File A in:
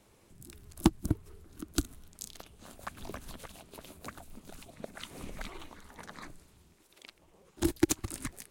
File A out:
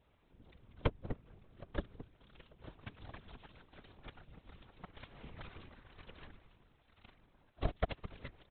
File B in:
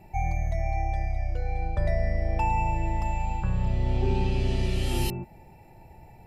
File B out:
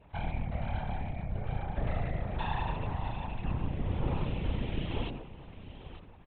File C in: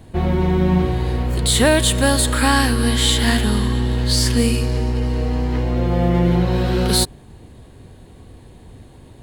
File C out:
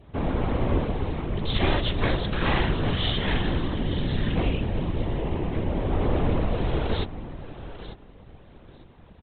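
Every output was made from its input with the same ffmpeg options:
-af "aecho=1:1:893|1786:0.2|0.0399,aresample=8000,aeval=exprs='abs(val(0))':c=same,aresample=44100,afftfilt=real='hypot(re,im)*cos(2*PI*random(0))':imag='hypot(re,im)*sin(2*PI*random(1))':win_size=512:overlap=0.75,adynamicequalizer=threshold=0.00282:dfrequency=1500:dqfactor=2.5:tfrequency=1500:tqfactor=2.5:attack=5:release=100:ratio=0.375:range=1.5:mode=cutabove:tftype=bell"

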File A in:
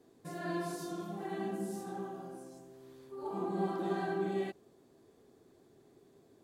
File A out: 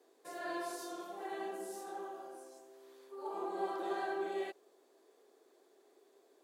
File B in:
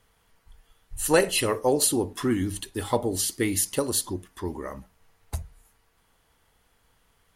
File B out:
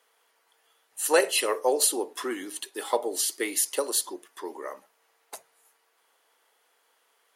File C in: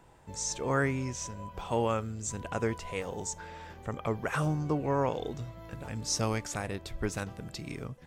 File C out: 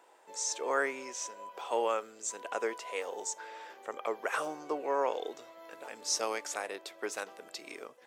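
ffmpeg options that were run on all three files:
-af "highpass=f=390:w=0.5412,highpass=f=390:w=1.3066"

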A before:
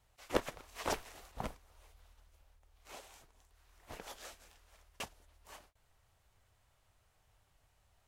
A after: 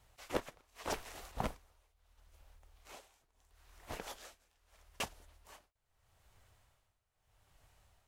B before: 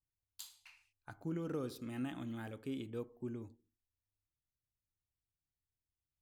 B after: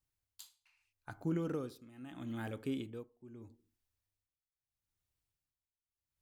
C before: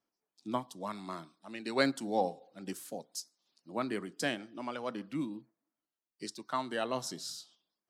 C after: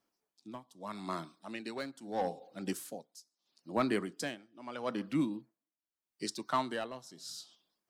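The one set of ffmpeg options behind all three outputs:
-filter_complex "[0:a]asplit=2[s0][s1];[s1]aeval=exprs='0.0398*(abs(mod(val(0)/0.0398+3,4)-2)-1)':c=same,volume=0.398[s2];[s0][s2]amix=inputs=2:normalize=0,tremolo=f=0.78:d=0.88,volume=1.26"

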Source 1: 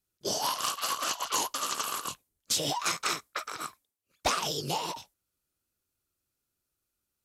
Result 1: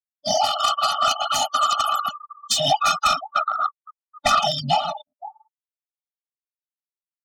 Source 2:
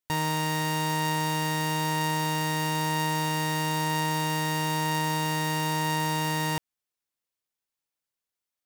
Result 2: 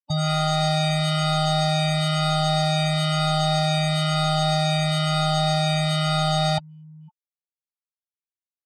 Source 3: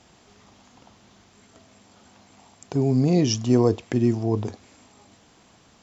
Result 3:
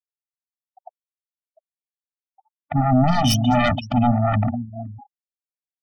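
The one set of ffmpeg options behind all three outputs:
-filter_complex "[0:a]asuperstop=centerf=2000:order=8:qfactor=2.3,asplit=2[s0][s1];[s1]aecho=0:1:514:0.141[s2];[s0][s2]amix=inputs=2:normalize=0,agate=range=0.0224:threshold=0.00282:ratio=3:detection=peak,acrossover=split=460|3600[s3][s4][s5];[s4]dynaudnorm=f=150:g=3:m=2.82[s6];[s3][s6][s5]amix=inputs=3:normalize=0,afftfilt=real='re*gte(hypot(re,im),0.0398)':imag='im*gte(hypot(re,im),0.0398)':win_size=1024:overlap=0.75,highpass=59,aeval=exprs='0.668*sin(PI/2*4.47*val(0)/0.668)':c=same,afftfilt=real='re*eq(mod(floor(b*sr/1024/290),2),0)':imag='im*eq(mod(floor(b*sr/1024/290),2),0)':win_size=1024:overlap=0.75,volume=0.447"

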